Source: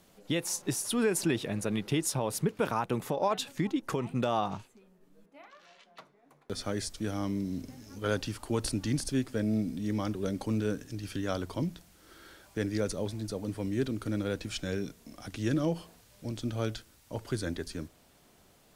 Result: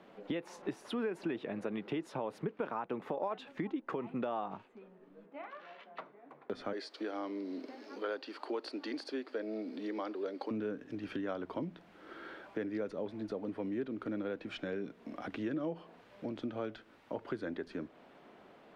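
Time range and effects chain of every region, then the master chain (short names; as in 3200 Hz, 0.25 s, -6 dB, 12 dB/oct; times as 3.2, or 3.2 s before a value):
6.73–10.51 HPF 320 Hz 24 dB/oct + bell 4500 Hz +14 dB 0.34 oct
whole clip: three-band isolator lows -22 dB, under 200 Hz, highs -21 dB, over 3500 Hz; compressor 3:1, threshold -46 dBFS; high shelf 3400 Hz -11 dB; gain +8 dB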